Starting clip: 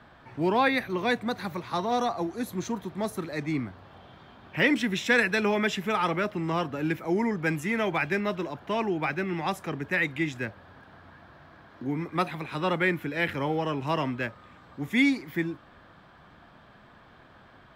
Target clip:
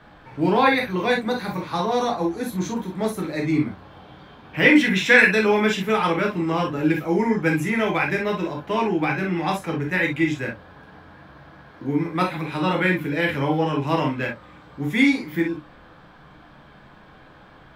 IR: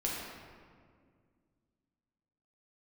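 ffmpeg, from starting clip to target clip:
-filter_complex "[0:a]asettb=1/sr,asplit=3[a][b][c];[a]atrim=end=4.654[d];[b]atrim=start=4.65:end=5.25,asetpts=PTS-STARTPTS,afade=t=in:d=0.004:c=qsin,afade=t=out:st=0.596:d=0.004:c=qsin,equalizer=f=2.1k:t=o:w=0.98:g=7[e];[c]atrim=start=5.246[f];[d][e]acrossfade=d=0.004:c1=hsin:c2=qsin[g];[g][f]acrossfade=d=0.004:c1=qsin:c2=hsin[h];[1:a]atrim=start_sample=2205,atrim=end_sample=3087[i];[h][i]afir=irnorm=-1:irlink=0,volume=3dB"

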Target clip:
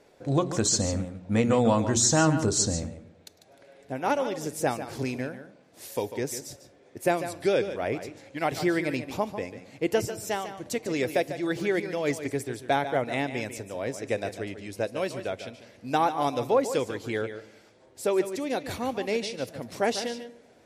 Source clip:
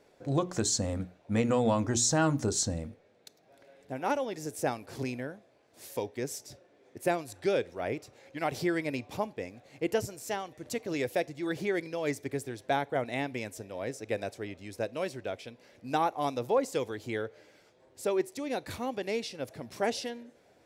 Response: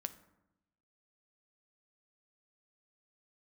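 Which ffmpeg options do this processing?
-filter_complex "[0:a]asplit=2[a][b];[1:a]atrim=start_sample=2205,adelay=146[c];[b][c]afir=irnorm=-1:irlink=0,volume=-8.5dB[d];[a][d]amix=inputs=2:normalize=0,volume=4.5dB" -ar 44100 -c:a libmp3lame -b:a 56k

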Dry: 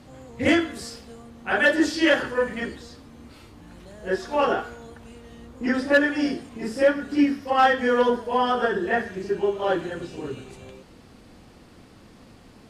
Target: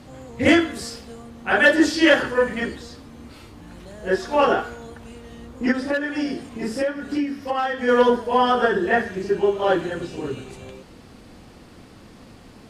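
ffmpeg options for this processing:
-filter_complex "[0:a]asplit=3[a][b][c];[a]afade=t=out:st=5.71:d=0.02[d];[b]acompressor=threshold=-25dB:ratio=6,afade=t=in:st=5.71:d=0.02,afade=t=out:st=7.87:d=0.02[e];[c]afade=t=in:st=7.87:d=0.02[f];[d][e][f]amix=inputs=3:normalize=0,volume=4dB"

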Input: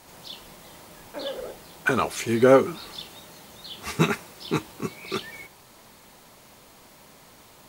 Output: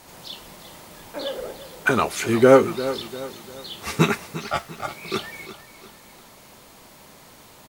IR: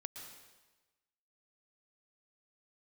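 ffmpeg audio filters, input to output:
-filter_complex "[0:a]asettb=1/sr,asplit=3[a][b][c];[a]atrim=end=4.364[d];[b]atrim=start=4.36:end=4.88,asetpts=PTS-STARTPTS,afade=t=in:d=0.004:c=qsin,afade=t=out:st=0.516:d=0.004:c=qsin,aeval=exprs='val(0)*sin(2*PI*1000*n/s)':c=same[e];[c]atrim=start=4.876[f];[d][e]acrossfade=d=0.004:c1=hsin:c2=qsin[g];[g][f]acrossfade=d=0.004:c1=qsin:c2=hsin,asplit=2[h][i];[i]aecho=0:1:349|698|1047|1396:0.2|0.0838|0.0352|0.0148[j];[h][j]amix=inputs=2:normalize=0,volume=3dB"

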